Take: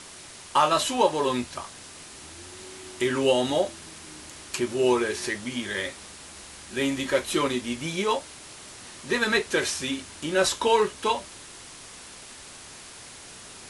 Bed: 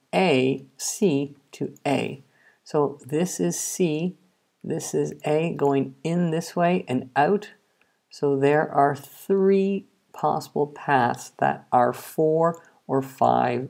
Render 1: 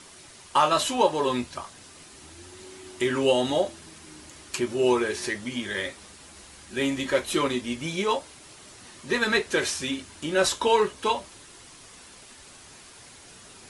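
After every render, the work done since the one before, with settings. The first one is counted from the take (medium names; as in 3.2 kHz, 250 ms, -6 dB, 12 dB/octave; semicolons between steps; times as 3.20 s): noise reduction 6 dB, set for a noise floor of -45 dBFS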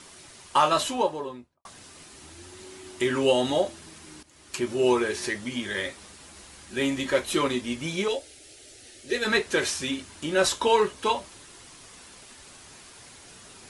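0.67–1.65 s: studio fade out; 4.23–4.69 s: fade in, from -16.5 dB; 8.08–9.25 s: static phaser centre 430 Hz, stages 4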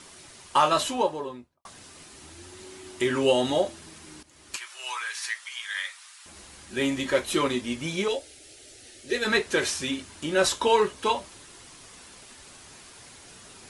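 4.56–6.26 s: high-pass 1.1 kHz 24 dB/octave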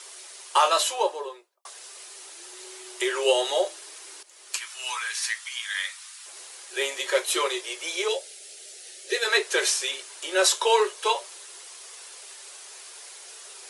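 steep high-pass 370 Hz 72 dB/octave; treble shelf 3.4 kHz +7.5 dB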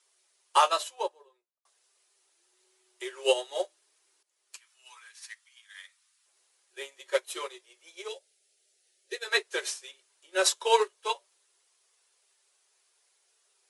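upward expansion 2.5:1, over -34 dBFS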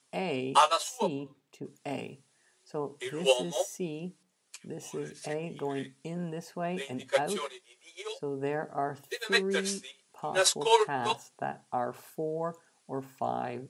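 add bed -13 dB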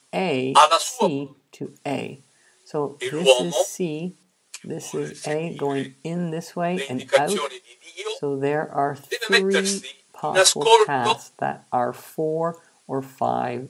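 trim +9.5 dB; peak limiter -1 dBFS, peak gain reduction 2 dB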